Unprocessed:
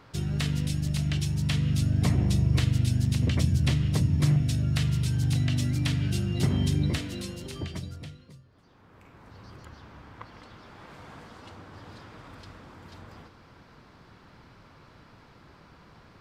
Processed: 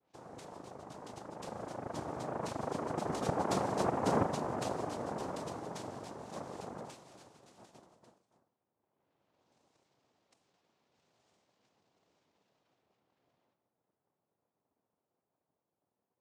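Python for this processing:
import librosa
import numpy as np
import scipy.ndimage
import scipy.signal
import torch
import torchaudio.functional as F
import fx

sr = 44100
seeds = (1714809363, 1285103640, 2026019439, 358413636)

y = fx.doppler_pass(x, sr, speed_mps=17, closest_m=12.0, pass_at_s=3.84)
y = fx.noise_vocoder(y, sr, seeds[0], bands=2)
y = fx.env_lowpass(y, sr, base_hz=630.0, full_db=-61.0)
y = y * 10.0 ** (-7.0 / 20.0)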